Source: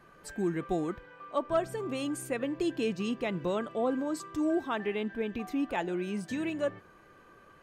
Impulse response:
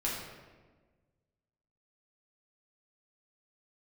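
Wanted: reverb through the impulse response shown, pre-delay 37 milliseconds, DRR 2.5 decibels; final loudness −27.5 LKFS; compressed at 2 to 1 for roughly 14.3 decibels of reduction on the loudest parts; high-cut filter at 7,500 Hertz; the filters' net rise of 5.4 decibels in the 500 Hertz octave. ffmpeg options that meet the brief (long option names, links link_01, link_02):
-filter_complex "[0:a]lowpass=7500,equalizer=frequency=500:width_type=o:gain=7,acompressor=threshold=-48dB:ratio=2,asplit=2[link_01][link_02];[1:a]atrim=start_sample=2205,adelay=37[link_03];[link_02][link_03]afir=irnorm=-1:irlink=0,volume=-8dB[link_04];[link_01][link_04]amix=inputs=2:normalize=0,volume=12dB"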